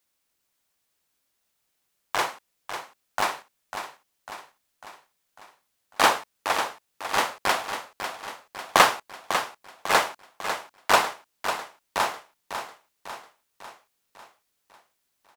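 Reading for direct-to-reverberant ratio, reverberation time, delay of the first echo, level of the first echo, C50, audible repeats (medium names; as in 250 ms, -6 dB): no reverb, no reverb, 548 ms, -9.0 dB, no reverb, 5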